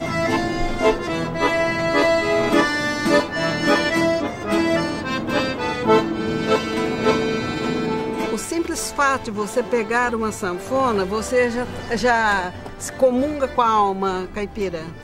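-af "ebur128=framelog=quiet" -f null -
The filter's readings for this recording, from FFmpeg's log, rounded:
Integrated loudness:
  I:         -20.5 LUFS
  Threshold: -30.6 LUFS
Loudness range:
  LRA:         3.0 LU
  Threshold: -40.5 LUFS
  LRA low:   -21.9 LUFS
  LRA high:  -18.9 LUFS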